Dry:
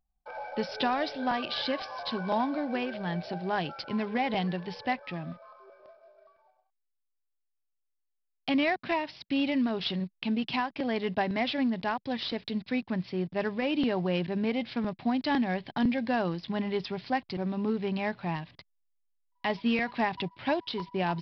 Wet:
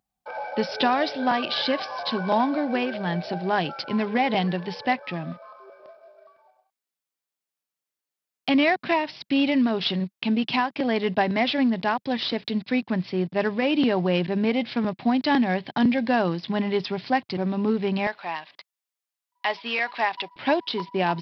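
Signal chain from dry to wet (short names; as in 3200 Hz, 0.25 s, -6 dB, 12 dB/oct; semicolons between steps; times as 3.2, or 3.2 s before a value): HPF 130 Hz 12 dB/oct, from 18.07 s 650 Hz, from 20.36 s 190 Hz; gain +6.5 dB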